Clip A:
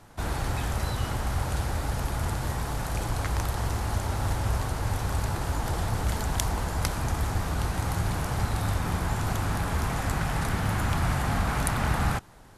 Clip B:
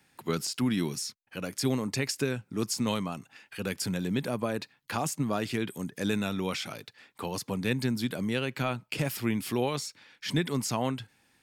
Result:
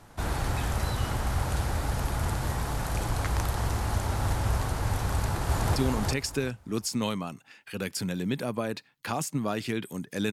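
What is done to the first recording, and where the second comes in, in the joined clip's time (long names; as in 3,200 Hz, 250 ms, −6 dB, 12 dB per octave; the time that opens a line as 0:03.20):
clip A
0:05.12–0:05.76: delay throw 370 ms, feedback 20%, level −1.5 dB
0:05.76: continue with clip B from 0:01.61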